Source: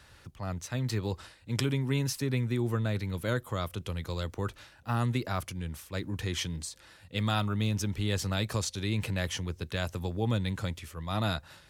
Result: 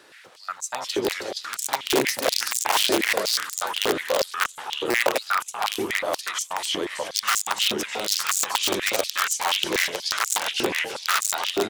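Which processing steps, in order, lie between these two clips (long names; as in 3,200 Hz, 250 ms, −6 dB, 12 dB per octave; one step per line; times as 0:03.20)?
delay with pitch and tempo change per echo 119 ms, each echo −2 semitones, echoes 3
on a send: repeating echo 320 ms, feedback 55%, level −7 dB
on the sum: wrap-around overflow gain 20 dB
high-pass on a step sequencer 8.3 Hz 360–7,200 Hz
level +4.5 dB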